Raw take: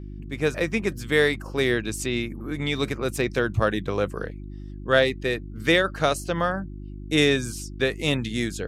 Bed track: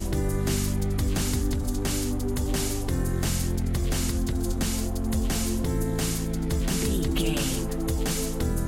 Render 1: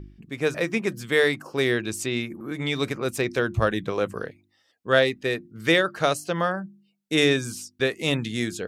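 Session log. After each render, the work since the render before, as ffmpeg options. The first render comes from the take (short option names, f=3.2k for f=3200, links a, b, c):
-af "bandreject=f=50:t=h:w=4,bandreject=f=100:t=h:w=4,bandreject=f=150:t=h:w=4,bandreject=f=200:t=h:w=4,bandreject=f=250:t=h:w=4,bandreject=f=300:t=h:w=4,bandreject=f=350:t=h:w=4"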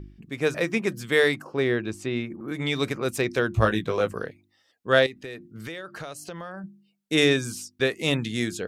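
-filter_complex "[0:a]asettb=1/sr,asplit=3[a][b][c];[a]atrim=end=1.444[d];[b]atrim=start=1.44:end=2.48,asetpts=PTS-STARTPTS,afade=t=in:d=0.004:c=qsin,afade=t=out:st=1.036:d=0.004:c=qsin,lowpass=f=1.7k:p=1[e];[c]atrim=start=2.476[f];[d][e]acrossfade=d=0.004:c1=hsin:c2=qsin[g];[g][f]acrossfade=d=0.004:c1=qsin:c2=hsin,asettb=1/sr,asplit=3[h][i][j];[h]atrim=end=3.534[k];[i]atrim=start=3.53:end=4.12,asetpts=PTS-STARTPTS,afade=t=in:d=0.004:c=qsin,afade=t=out:st=0.586:d=0.004:c=qsin,asplit=2[l][m];[m]adelay=18,volume=-5.5dB[n];[l][n]amix=inputs=2:normalize=0,atrim=end_sample=26019[o];[j]atrim=start=4.116[p];[k][o]acrossfade=d=0.004:c1=hsin:c2=qsin[q];[q][p]acrossfade=d=0.004:c1=qsin:c2=hsin,asettb=1/sr,asplit=3[r][s][t];[r]atrim=end=5.064[u];[s]atrim=start=5.06:end=6.64,asetpts=PTS-STARTPTS,afade=t=in:d=0.004:c=qsin,afade=t=out:st=1.576:d=0.004:c=qsin,acompressor=threshold=-34dB:ratio=6:attack=3.2:release=140:knee=1:detection=peak[v];[t]atrim=start=6.636[w];[u][v]acrossfade=d=0.004:c1=hsin:c2=qsin[x];[x][w]acrossfade=d=0.004:c1=qsin:c2=hsin"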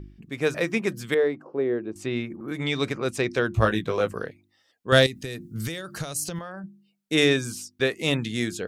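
-filter_complex "[0:a]asettb=1/sr,asplit=3[a][b][c];[a]atrim=end=1.144[d];[b]atrim=start=1.14:end=1.96,asetpts=PTS-STARTPTS,afade=t=in:d=0.004:c=qsin,afade=t=out:st=0.816:d=0.004:c=qsin,bandpass=f=410:t=q:w=0.95[e];[c]atrim=start=1.956[f];[d][e]acrossfade=d=0.004:c1=hsin:c2=qsin[g];[g][f]acrossfade=d=0.004:c1=qsin:c2=hsin,asettb=1/sr,asplit=3[h][i][j];[h]atrim=end=2.644[k];[i]atrim=start=2.64:end=3.45,asetpts=PTS-STARTPTS,afade=t=in:d=0.004:c=qsin,afade=t=out:st=0.806:d=0.004:c=qsin,lowpass=8.7k[l];[j]atrim=start=3.446[m];[k][l]acrossfade=d=0.004:c1=hsin:c2=qsin[n];[n][m]acrossfade=d=0.004:c1=qsin:c2=hsin,asettb=1/sr,asplit=3[o][p][q];[o]atrim=end=4.924[r];[p]atrim=start=4.92:end=6.39,asetpts=PTS-STARTPTS,afade=t=in:d=0.004:c=qsin,afade=t=out:st=1.466:d=0.004:c=qsin,bass=f=250:g=11,treble=f=4k:g=14[s];[q]atrim=start=6.386[t];[r][s]acrossfade=d=0.004:c1=hsin:c2=qsin[u];[u][t]acrossfade=d=0.004:c1=qsin:c2=hsin"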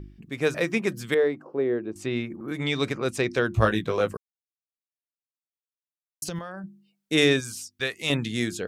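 -filter_complex "[0:a]asettb=1/sr,asplit=3[a][b][c];[a]atrim=end=7.404[d];[b]atrim=start=7.4:end=8.1,asetpts=PTS-STARTPTS,afade=t=in:d=0.004:c=qsin,afade=t=out:st=0.696:d=0.004:c=qsin,equalizer=f=290:w=0.45:g=-10.5[e];[c]atrim=start=8.096[f];[d][e]acrossfade=d=0.004:c1=hsin:c2=qsin[g];[g][f]acrossfade=d=0.004:c1=qsin:c2=hsin,asplit=3[h][i][j];[h]atrim=end=4.17,asetpts=PTS-STARTPTS,afade=t=out:st=4.166:d=0.004:c=hsin[k];[i]atrim=start=4.17:end=6.22,asetpts=PTS-STARTPTS,volume=0[l];[j]atrim=start=6.22,asetpts=PTS-STARTPTS,afade=t=in:d=0.004:c=hsin[m];[k][l][m]concat=n=3:v=0:a=1"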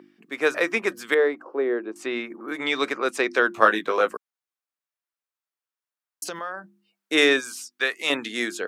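-af "highpass=f=270:w=0.5412,highpass=f=270:w=1.3066,equalizer=f=1.3k:w=0.83:g=8.5"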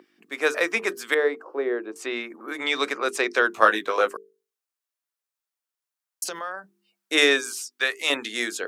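-af "bass=f=250:g=-8,treble=f=4k:g=4,bandreject=f=50:t=h:w=6,bandreject=f=100:t=h:w=6,bandreject=f=150:t=h:w=6,bandreject=f=200:t=h:w=6,bandreject=f=250:t=h:w=6,bandreject=f=300:t=h:w=6,bandreject=f=350:t=h:w=6,bandreject=f=400:t=h:w=6,bandreject=f=450:t=h:w=6"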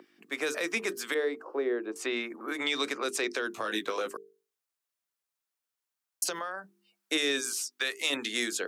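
-filter_complex "[0:a]alimiter=limit=-13.5dB:level=0:latency=1:release=18,acrossover=split=340|3000[a][b][c];[b]acompressor=threshold=-33dB:ratio=6[d];[a][d][c]amix=inputs=3:normalize=0"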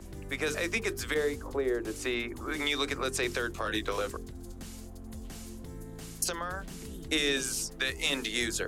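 -filter_complex "[1:a]volume=-17dB[a];[0:a][a]amix=inputs=2:normalize=0"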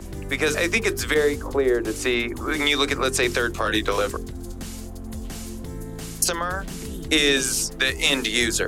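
-af "volume=9.5dB"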